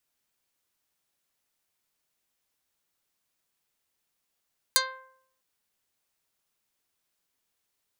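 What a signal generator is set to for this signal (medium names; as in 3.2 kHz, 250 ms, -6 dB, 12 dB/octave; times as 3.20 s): plucked string C5, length 0.65 s, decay 0.70 s, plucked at 0.19, dark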